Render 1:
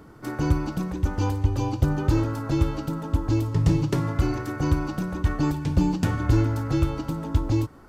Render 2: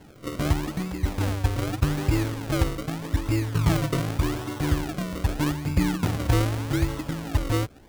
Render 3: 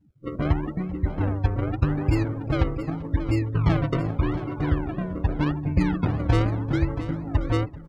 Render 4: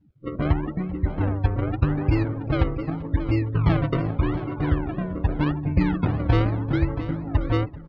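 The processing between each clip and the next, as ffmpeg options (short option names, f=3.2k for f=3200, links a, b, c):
-af "acrusher=samples=36:mix=1:aa=0.000001:lfo=1:lforange=36:lforate=0.83,volume=-1.5dB"
-af "afftdn=nr=33:nf=-34,areverse,acompressor=mode=upward:threshold=-43dB:ratio=2.5,areverse,aecho=1:1:388|676:0.106|0.224,volume=1dB"
-af "lowpass=f=4.5k:w=0.5412,lowpass=f=4.5k:w=1.3066,volume=1dB"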